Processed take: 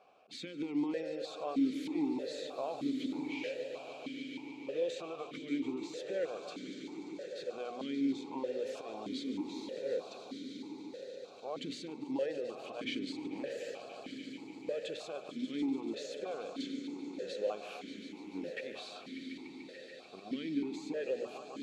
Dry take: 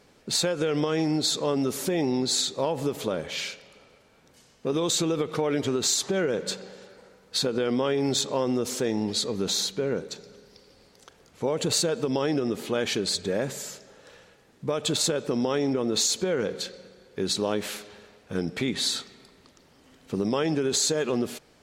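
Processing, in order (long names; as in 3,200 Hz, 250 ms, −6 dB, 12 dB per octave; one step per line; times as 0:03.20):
mains-hum notches 60/120/180/240/300/360 Hz
volume swells 166 ms
downward compressor 3 to 1, threshold −33 dBFS, peak gain reduction 9.5 dB
on a send: echo that builds up and dies away 146 ms, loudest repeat 5, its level −13 dB
on the sum: formant filter that steps through the vowels 3.2 Hz
level +6.5 dB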